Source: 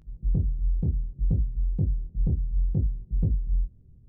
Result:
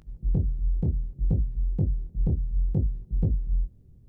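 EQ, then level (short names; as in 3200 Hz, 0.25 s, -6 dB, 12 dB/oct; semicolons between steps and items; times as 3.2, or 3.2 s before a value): low shelf 350 Hz -7.5 dB; +7.0 dB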